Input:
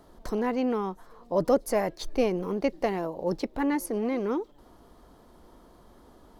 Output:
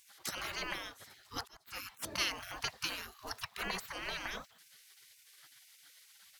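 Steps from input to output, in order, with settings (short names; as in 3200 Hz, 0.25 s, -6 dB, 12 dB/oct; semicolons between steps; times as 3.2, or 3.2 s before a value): spectral gate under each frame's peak -30 dB weak; 1.32–1.89 auto swell 0.707 s; gain +11.5 dB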